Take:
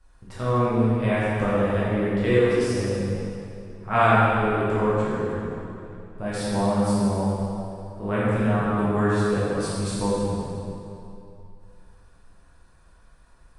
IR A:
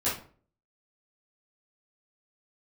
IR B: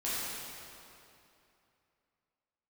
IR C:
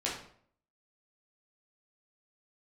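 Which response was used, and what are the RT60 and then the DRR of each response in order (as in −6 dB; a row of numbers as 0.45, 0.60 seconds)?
B; 0.45, 2.8, 0.60 seconds; −11.5, −10.5, −6.0 decibels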